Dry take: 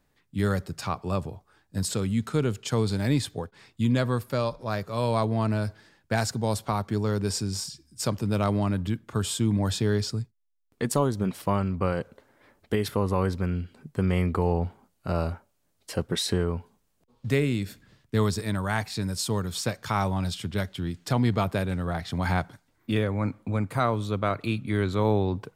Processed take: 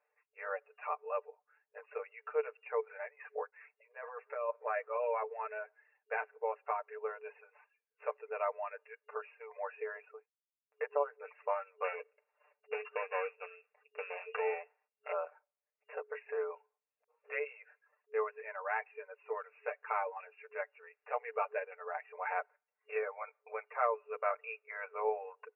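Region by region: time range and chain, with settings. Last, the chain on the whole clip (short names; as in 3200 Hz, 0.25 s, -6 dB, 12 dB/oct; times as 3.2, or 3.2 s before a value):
2.8–5 resonant high shelf 3000 Hz -12.5 dB, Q 1.5 + negative-ratio compressor -28 dBFS, ratio -0.5
11.84–15.12 sample sorter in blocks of 16 samples + notches 50/100/150/200/250/300/350/400/450 Hz
whole clip: reverb removal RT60 0.67 s; FFT band-pass 420–2800 Hz; comb 6.7 ms, depth 82%; gain -8 dB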